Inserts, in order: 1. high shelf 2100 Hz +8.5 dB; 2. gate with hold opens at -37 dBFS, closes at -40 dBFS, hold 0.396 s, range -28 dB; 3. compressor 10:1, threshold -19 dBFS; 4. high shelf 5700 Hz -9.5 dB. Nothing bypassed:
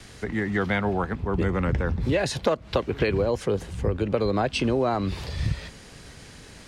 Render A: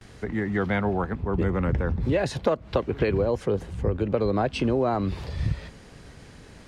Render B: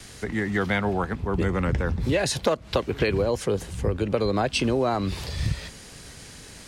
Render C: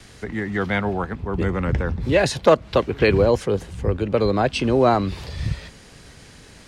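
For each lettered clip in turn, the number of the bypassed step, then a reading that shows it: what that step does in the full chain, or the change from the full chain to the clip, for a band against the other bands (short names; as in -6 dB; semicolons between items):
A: 1, 4 kHz band -5.5 dB; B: 4, 8 kHz band +5.5 dB; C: 3, mean gain reduction 2.0 dB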